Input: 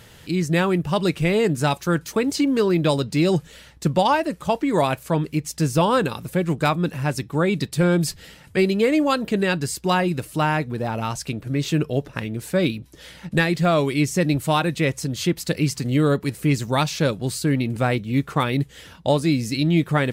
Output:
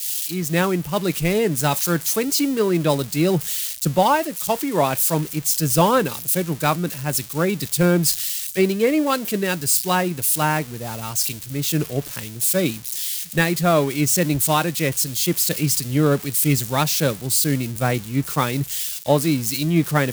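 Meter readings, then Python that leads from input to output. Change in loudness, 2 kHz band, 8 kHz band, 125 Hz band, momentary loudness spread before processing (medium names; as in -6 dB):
+2.0 dB, 0.0 dB, +12.0 dB, -0.5 dB, 7 LU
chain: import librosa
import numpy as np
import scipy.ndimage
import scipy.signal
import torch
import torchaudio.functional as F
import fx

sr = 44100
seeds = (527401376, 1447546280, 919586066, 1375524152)

y = x + 0.5 * 10.0 ** (-17.0 / 20.0) * np.diff(np.sign(x), prepend=np.sign(x[:1]))
y = fx.band_widen(y, sr, depth_pct=100)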